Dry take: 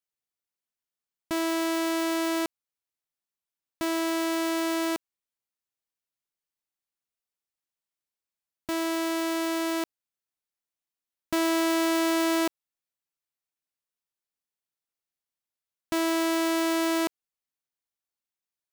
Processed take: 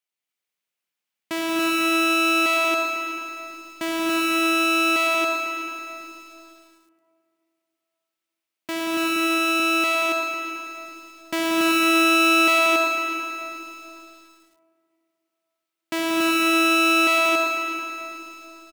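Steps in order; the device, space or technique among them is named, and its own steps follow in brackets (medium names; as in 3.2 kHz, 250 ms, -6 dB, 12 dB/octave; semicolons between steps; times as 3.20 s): stadium PA (high-pass 170 Hz 12 dB/octave; peaking EQ 2.5 kHz +7 dB 1.1 oct; loudspeakers at several distances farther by 63 m -6 dB, 86 m -9 dB, 97 m -1 dB; reverberation RT60 3.0 s, pre-delay 52 ms, DRR 2 dB); 9.16–9.60 s: high-pass 170 Hz; bit-crushed delay 109 ms, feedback 80%, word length 8-bit, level -10.5 dB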